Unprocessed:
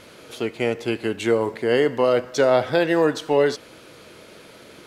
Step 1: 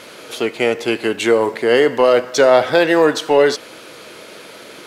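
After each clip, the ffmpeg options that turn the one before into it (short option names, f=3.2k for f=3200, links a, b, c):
-filter_complex "[0:a]highpass=f=360:p=1,asplit=2[a][b];[b]asoftclip=type=tanh:threshold=-23.5dB,volume=-8dB[c];[a][c]amix=inputs=2:normalize=0,volume=6.5dB"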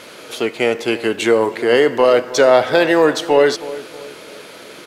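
-filter_complex "[0:a]asplit=2[a][b];[b]adelay=318,lowpass=f=1.2k:p=1,volume=-15dB,asplit=2[c][d];[d]adelay=318,lowpass=f=1.2k:p=1,volume=0.46,asplit=2[e][f];[f]adelay=318,lowpass=f=1.2k:p=1,volume=0.46,asplit=2[g][h];[h]adelay=318,lowpass=f=1.2k:p=1,volume=0.46[i];[a][c][e][g][i]amix=inputs=5:normalize=0"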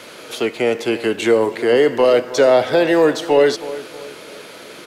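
-filter_complex "[0:a]acrossover=split=260|900|1600[a][b][c][d];[c]acompressor=threshold=-34dB:ratio=6[e];[d]alimiter=limit=-16.5dB:level=0:latency=1:release=26[f];[a][b][e][f]amix=inputs=4:normalize=0"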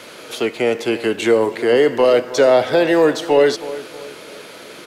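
-af anull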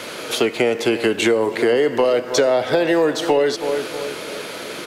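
-af "acompressor=threshold=-21dB:ratio=5,volume=6.5dB"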